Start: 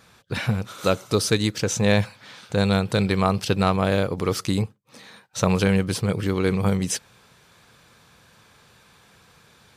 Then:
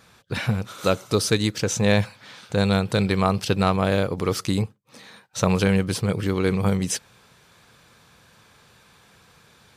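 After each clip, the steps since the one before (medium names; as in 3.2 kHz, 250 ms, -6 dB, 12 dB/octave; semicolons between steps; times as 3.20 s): no audible change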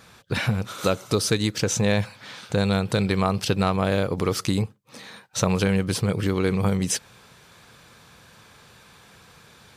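compression 2:1, threshold -25 dBFS, peak gain reduction 7 dB; trim +3.5 dB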